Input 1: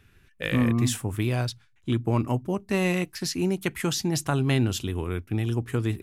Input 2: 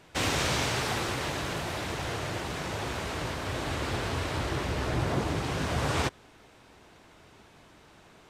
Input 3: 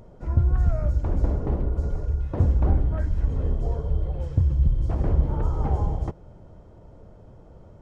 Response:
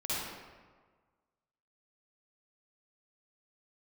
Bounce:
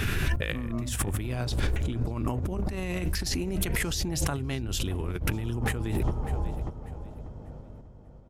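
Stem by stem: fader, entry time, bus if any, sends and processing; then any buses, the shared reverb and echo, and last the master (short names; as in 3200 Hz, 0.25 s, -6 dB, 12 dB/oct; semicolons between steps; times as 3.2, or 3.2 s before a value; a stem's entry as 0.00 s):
-2.0 dB, 0.00 s, no send, echo send -23.5 dB, fast leveller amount 70%
off
-3.5 dB, 0.00 s, no send, echo send -7 dB, hum 50 Hz, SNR 24 dB; tremolo saw up 0.92 Hz, depth 40%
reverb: off
echo: feedback echo 0.592 s, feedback 27%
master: negative-ratio compressor -29 dBFS, ratio -1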